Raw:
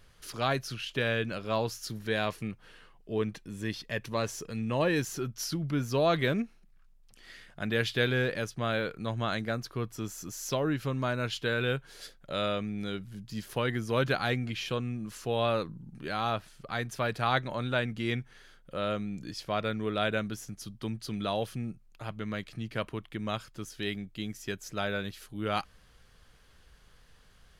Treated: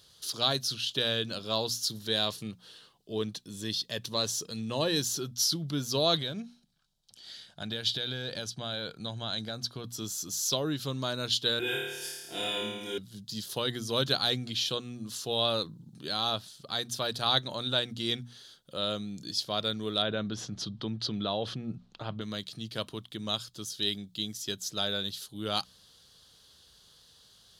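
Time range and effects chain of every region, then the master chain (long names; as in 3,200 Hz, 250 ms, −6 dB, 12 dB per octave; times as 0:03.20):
0:06.18–0:09.84: high-shelf EQ 11,000 Hz −12 dB + comb filter 1.3 ms, depth 32% + downward compressor 10 to 1, threshold −30 dBFS
0:11.59–0:12.98: phaser with its sweep stopped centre 820 Hz, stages 8 + comb filter 5.7 ms, depth 97% + flutter between parallel walls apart 4.7 metres, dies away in 1.2 s
0:20.02–0:22.21: low-pass filter 2,300 Hz + envelope flattener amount 50%
whole clip: high-pass filter 86 Hz; high shelf with overshoot 2,900 Hz +8.5 dB, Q 3; mains-hum notches 60/120/180/240 Hz; level −2 dB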